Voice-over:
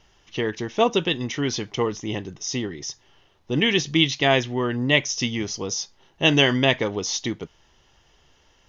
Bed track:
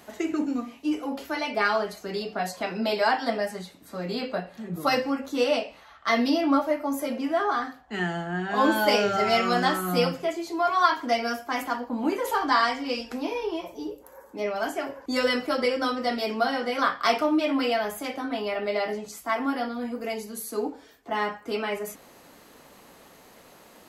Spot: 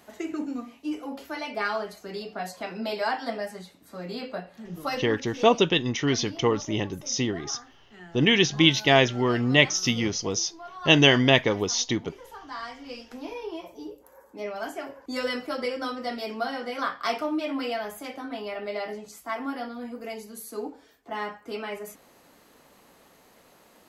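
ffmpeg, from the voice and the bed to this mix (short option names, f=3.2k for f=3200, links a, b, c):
-filter_complex "[0:a]adelay=4650,volume=0.5dB[a];[1:a]volume=9dB,afade=t=out:st=4.69:d=0.81:silence=0.199526,afade=t=in:st=12.44:d=1.15:silence=0.211349[b];[a][b]amix=inputs=2:normalize=0"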